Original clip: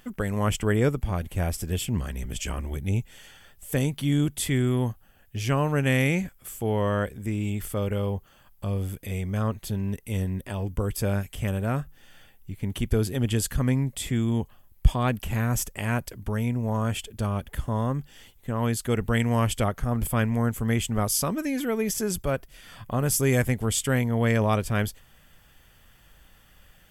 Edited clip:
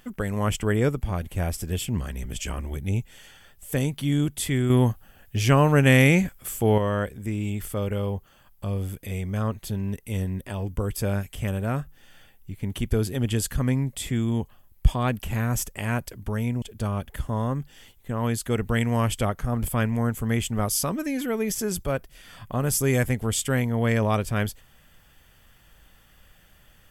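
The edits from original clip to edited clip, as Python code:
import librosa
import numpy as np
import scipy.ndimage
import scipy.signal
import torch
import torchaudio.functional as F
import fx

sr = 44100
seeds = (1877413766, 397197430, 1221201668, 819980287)

y = fx.edit(x, sr, fx.clip_gain(start_s=4.7, length_s=2.08, db=6.0),
    fx.cut(start_s=16.62, length_s=0.39), tone=tone)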